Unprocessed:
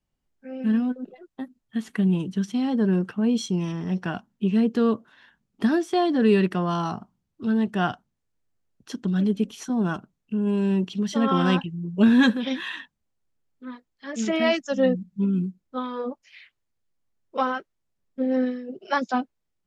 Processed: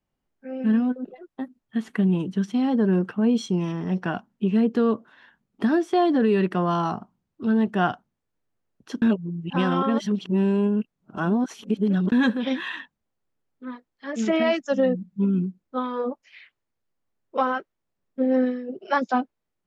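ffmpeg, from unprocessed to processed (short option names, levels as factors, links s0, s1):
-filter_complex "[0:a]asplit=3[s0][s1][s2];[s0]atrim=end=9.022[s3];[s1]atrim=start=9.018:end=12.122,asetpts=PTS-STARTPTS,areverse[s4];[s2]atrim=start=12.118[s5];[s3][s4]acrossfade=d=0.004:c1=hsin:c2=hsin[s6];[s6][s5]acrossfade=d=0.004:c1=hsin:c2=hsin,highshelf=f=2900:g=-10.5,alimiter=limit=0.178:level=0:latency=1:release=156,lowshelf=f=160:g=-8.5,volume=1.68"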